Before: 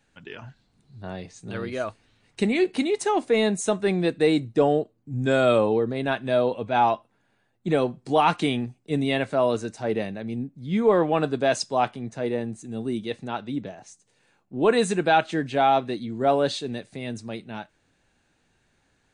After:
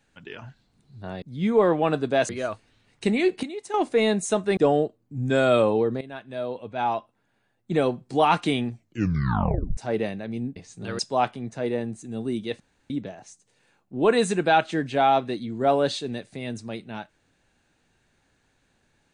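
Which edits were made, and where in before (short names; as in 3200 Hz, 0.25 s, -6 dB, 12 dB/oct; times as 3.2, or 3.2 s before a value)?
1.22–1.65 swap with 10.52–11.59
2.79–3.1 gain -10.5 dB
3.93–4.53 cut
5.97–7.81 fade in, from -15.5 dB
8.66 tape stop 1.07 s
13.2–13.5 room tone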